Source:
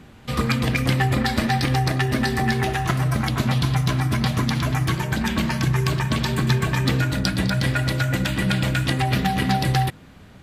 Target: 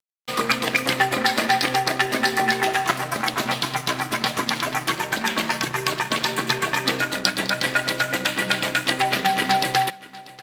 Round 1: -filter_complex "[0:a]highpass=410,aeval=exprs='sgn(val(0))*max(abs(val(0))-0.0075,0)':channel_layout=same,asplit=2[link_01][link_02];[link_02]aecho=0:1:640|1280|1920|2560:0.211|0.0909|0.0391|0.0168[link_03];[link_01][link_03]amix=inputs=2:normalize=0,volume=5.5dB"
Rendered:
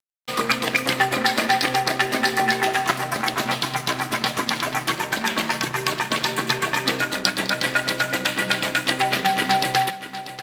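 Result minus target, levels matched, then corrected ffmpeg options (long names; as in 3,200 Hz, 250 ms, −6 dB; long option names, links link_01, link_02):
echo-to-direct +7.5 dB
-filter_complex "[0:a]highpass=410,aeval=exprs='sgn(val(0))*max(abs(val(0))-0.0075,0)':channel_layout=same,asplit=2[link_01][link_02];[link_02]aecho=0:1:640|1280|1920:0.0891|0.0383|0.0165[link_03];[link_01][link_03]amix=inputs=2:normalize=0,volume=5.5dB"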